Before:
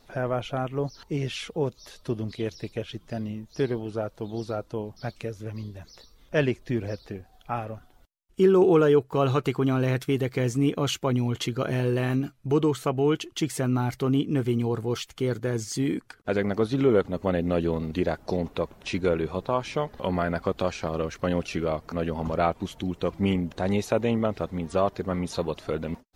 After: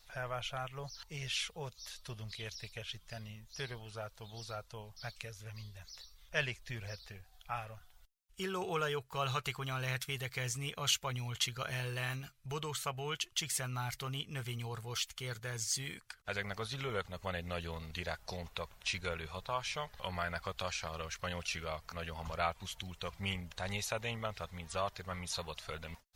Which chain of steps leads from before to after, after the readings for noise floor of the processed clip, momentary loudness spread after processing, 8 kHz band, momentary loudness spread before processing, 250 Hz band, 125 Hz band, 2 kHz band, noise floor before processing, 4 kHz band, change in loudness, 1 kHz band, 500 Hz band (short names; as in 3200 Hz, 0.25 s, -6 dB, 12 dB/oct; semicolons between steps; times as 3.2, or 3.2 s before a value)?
-64 dBFS, 11 LU, +0.5 dB, 11 LU, -22.5 dB, -13.0 dB, -3.5 dB, -58 dBFS, -1.0 dB, -12.5 dB, -9.0 dB, -18.0 dB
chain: passive tone stack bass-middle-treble 10-0-10; gain +1 dB